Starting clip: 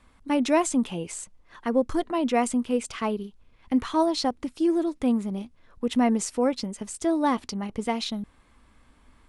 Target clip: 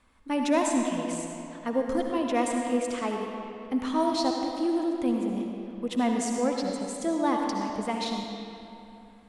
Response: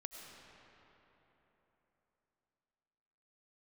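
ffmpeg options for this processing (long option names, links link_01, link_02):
-filter_complex "[0:a]lowshelf=frequency=170:gain=-5[link_01];[1:a]atrim=start_sample=2205,asetrate=61740,aresample=44100[link_02];[link_01][link_02]afir=irnorm=-1:irlink=0,volume=5dB"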